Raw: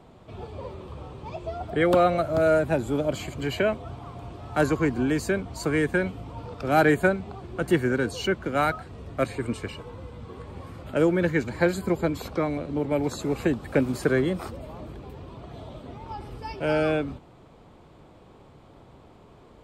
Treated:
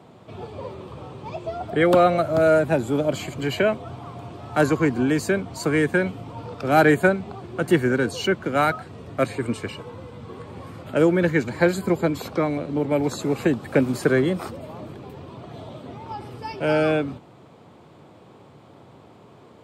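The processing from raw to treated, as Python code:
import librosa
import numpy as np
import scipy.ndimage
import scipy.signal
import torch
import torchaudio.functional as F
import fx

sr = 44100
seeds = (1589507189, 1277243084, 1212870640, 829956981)

y = scipy.signal.sosfilt(scipy.signal.butter(4, 96.0, 'highpass', fs=sr, output='sos'), x)
y = y * 10.0 ** (3.5 / 20.0)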